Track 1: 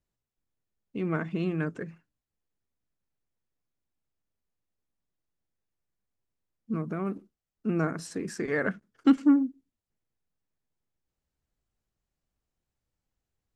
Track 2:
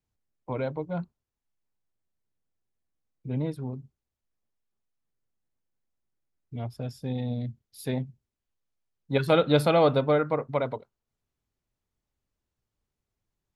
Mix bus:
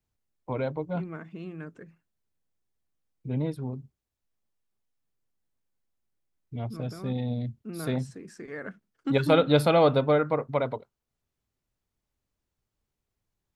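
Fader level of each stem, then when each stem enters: -10.0 dB, +0.5 dB; 0.00 s, 0.00 s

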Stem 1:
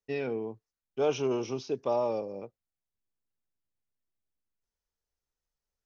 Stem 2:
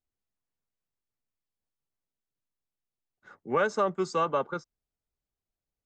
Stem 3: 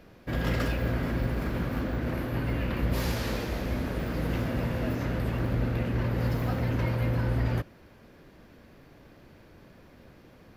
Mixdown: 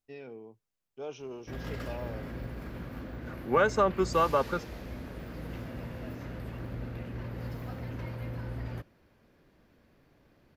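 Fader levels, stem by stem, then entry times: -12.5 dB, +1.5 dB, -10.5 dB; 0.00 s, 0.00 s, 1.20 s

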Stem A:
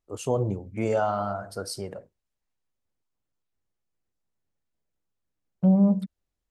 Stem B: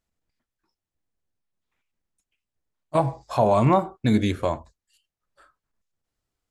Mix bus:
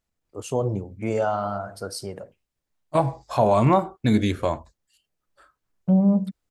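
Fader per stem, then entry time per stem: +1.0 dB, +0.5 dB; 0.25 s, 0.00 s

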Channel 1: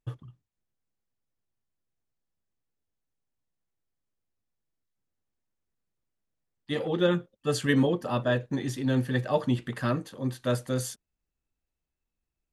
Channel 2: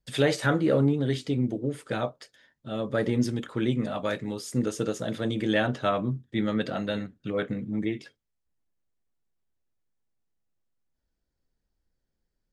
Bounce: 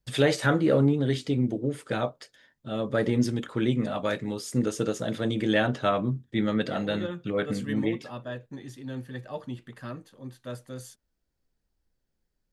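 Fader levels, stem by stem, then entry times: -10.5 dB, +1.0 dB; 0.00 s, 0.00 s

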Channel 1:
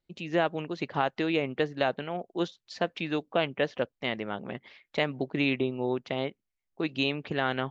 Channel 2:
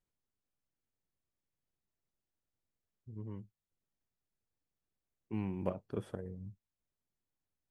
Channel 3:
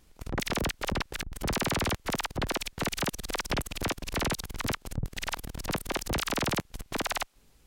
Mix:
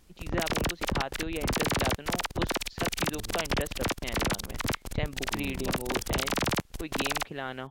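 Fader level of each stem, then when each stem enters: -7.5 dB, -3.0 dB, +1.0 dB; 0.00 s, 0.00 s, 0.00 s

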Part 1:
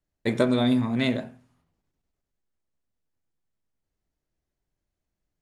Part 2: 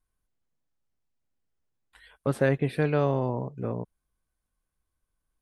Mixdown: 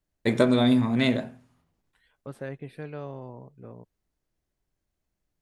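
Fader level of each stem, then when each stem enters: +1.5 dB, -13.0 dB; 0.00 s, 0.00 s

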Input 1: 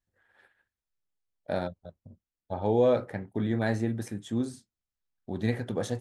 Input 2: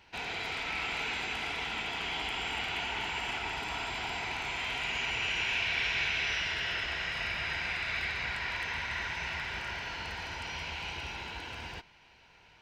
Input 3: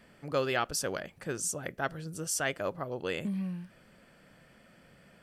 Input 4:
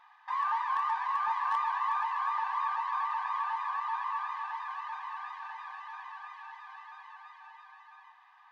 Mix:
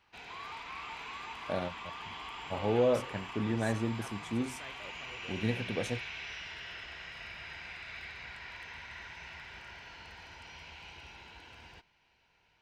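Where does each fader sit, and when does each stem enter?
-4.0 dB, -11.0 dB, -18.0 dB, -16.0 dB; 0.00 s, 0.00 s, 2.20 s, 0.00 s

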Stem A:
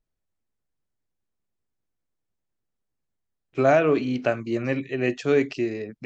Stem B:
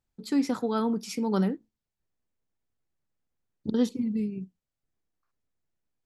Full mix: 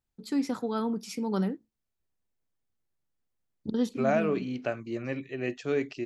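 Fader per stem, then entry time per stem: -8.0 dB, -3.0 dB; 0.40 s, 0.00 s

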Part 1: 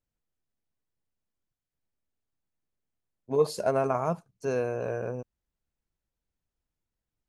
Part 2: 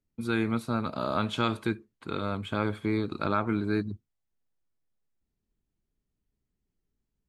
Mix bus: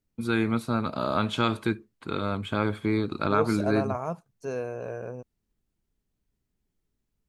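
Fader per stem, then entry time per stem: -3.5 dB, +2.5 dB; 0.00 s, 0.00 s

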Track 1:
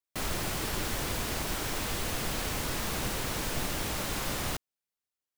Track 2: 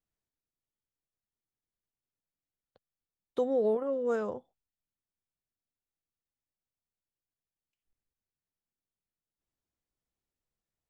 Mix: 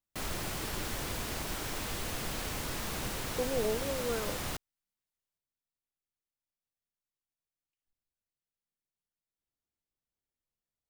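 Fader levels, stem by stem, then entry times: -4.0 dB, -5.0 dB; 0.00 s, 0.00 s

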